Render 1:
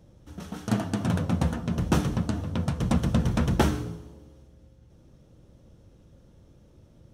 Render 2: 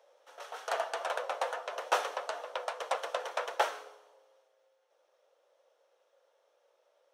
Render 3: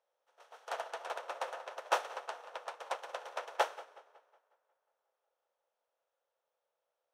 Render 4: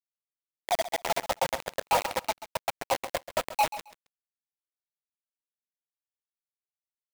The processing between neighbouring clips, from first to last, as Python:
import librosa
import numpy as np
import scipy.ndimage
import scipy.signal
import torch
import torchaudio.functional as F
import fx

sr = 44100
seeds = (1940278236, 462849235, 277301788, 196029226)

y1 = scipy.signal.sosfilt(scipy.signal.butter(8, 500.0, 'highpass', fs=sr, output='sos'), x)
y1 = fx.high_shelf(y1, sr, hz=4700.0, db=-11.0)
y1 = fx.rider(y1, sr, range_db=10, speed_s=2.0)
y1 = y1 * 10.0 ** (2.0 / 20.0)
y2 = fx.bin_compress(y1, sr, power=0.6)
y2 = fx.echo_tape(y2, sr, ms=182, feedback_pct=80, wet_db=-8.0, lp_hz=3900.0, drive_db=10.0, wow_cents=29)
y2 = fx.upward_expand(y2, sr, threshold_db=-45.0, expansion=2.5)
y2 = y2 * 10.0 ** (-2.0 / 20.0)
y3 = fx.spec_expand(y2, sr, power=3.8)
y3 = fx.quant_companded(y3, sr, bits=2)
y3 = fx.echo_feedback(y3, sr, ms=134, feedback_pct=17, wet_db=-14)
y3 = y3 * 10.0 ** (4.5 / 20.0)